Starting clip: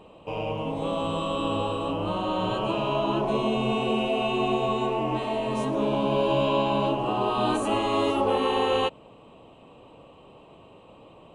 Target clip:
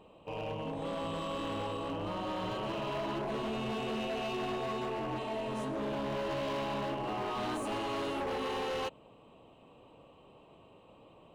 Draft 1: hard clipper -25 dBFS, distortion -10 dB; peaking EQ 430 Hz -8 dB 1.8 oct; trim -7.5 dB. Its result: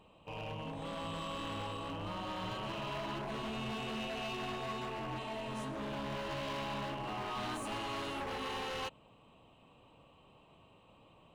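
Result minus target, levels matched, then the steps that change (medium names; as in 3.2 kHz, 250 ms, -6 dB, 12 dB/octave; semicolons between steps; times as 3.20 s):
500 Hz band -3.0 dB
remove: peaking EQ 430 Hz -8 dB 1.8 oct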